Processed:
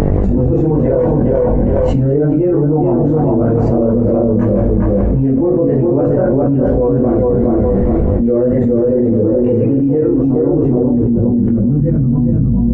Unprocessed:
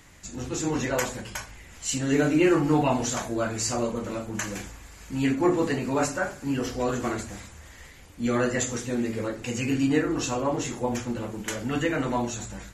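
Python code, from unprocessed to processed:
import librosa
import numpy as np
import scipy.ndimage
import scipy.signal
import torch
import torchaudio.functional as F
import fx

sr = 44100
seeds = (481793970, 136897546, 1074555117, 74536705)

p1 = fx.chorus_voices(x, sr, voices=6, hz=0.85, base_ms=21, depth_ms=1.1, mix_pct=55)
p2 = fx.dmg_buzz(p1, sr, base_hz=50.0, harmonics=17, level_db=-57.0, tilt_db=-4, odd_only=False)
p3 = fx.filter_sweep_lowpass(p2, sr, from_hz=480.0, to_hz=190.0, start_s=10.0, end_s=11.99, q=1.6)
p4 = p3 + fx.echo_tape(p3, sr, ms=412, feedback_pct=27, wet_db=-3, lp_hz=1400.0, drive_db=6.0, wow_cents=17, dry=0)
p5 = fx.wow_flutter(p4, sr, seeds[0], rate_hz=2.1, depth_cents=28.0)
p6 = fx.env_flatten(p5, sr, amount_pct=100)
y = p6 * 10.0 ** (4.0 / 20.0)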